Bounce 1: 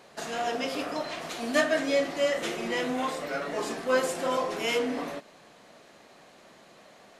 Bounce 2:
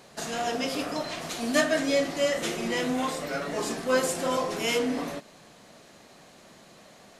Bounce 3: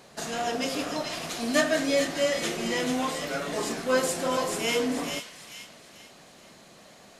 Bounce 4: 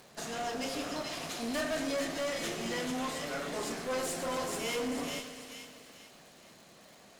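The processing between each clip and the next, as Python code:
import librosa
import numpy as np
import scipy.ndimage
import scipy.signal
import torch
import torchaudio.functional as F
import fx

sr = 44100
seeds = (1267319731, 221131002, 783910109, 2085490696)

y1 = fx.bass_treble(x, sr, bass_db=7, treble_db=6)
y2 = fx.echo_wet_highpass(y1, sr, ms=439, feedback_pct=37, hz=2400.0, wet_db=-4.0)
y3 = fx.tube_stage(y2, sr, drive_db=27.0, bias=0.5)
y3 = fx.dmg_crackle(y3, sr, seeds[0], per_s=140.0, level_db=-43.0)
y3 = fx.echo_crushed(y3, sr, ms=125, feedback_pct=80, bits=9, wet_db=-14)
y3 = y3 * 10.0 ** (-3.0 / 20.0)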